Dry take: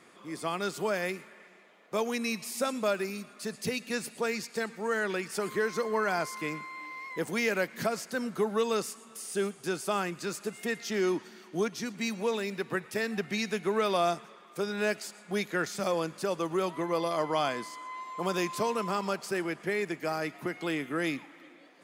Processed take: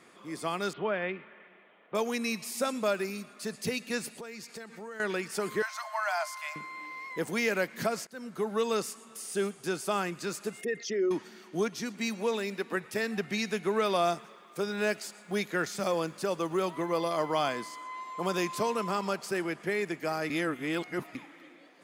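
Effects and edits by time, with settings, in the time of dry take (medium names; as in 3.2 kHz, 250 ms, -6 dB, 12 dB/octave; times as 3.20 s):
0.73–1.95 s: elliptic low-pass 3.3 kHz, stop band 60 dB
4.16–5.00 s: compression 4:1, threshold -41 dBFS
5.62–6.56 s: Chebyshev high-pass 600 Hz, order 10
8.07–8.84 s: fade in equal-power, from -19 dB
10.61–11.11 s: resonances exaggerated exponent 2
11.82–12.77 s: brick-wall FIR high-pass 170 Hz
14.04–17.84 s: companded quantiser 8-bit
20.30–21.15 s: reverse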